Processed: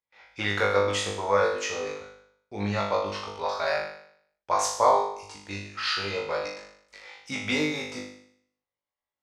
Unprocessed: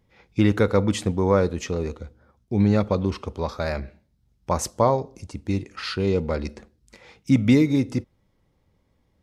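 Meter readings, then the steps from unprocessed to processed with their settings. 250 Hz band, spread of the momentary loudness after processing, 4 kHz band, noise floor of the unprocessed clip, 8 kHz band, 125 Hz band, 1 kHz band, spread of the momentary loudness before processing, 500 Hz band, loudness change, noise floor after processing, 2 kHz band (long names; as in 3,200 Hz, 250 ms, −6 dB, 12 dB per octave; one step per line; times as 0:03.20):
−13.5 dB, 17 LU, +4.0 dB, −67 dBFS, +1.5 dB, −14.0 dB, +3.0 dB, 14 LU, −3.0 dB, −4.0 dB, below −85 dBFS, +4.5 dB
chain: three-way crossover with the lows and the highs turned down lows −22 dB, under 590 Hz, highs −12 dB, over 7,700 Hz
noise gate with hold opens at −52 dBFS
flutter between parallel walls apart 3.4 metres, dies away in 0.66 s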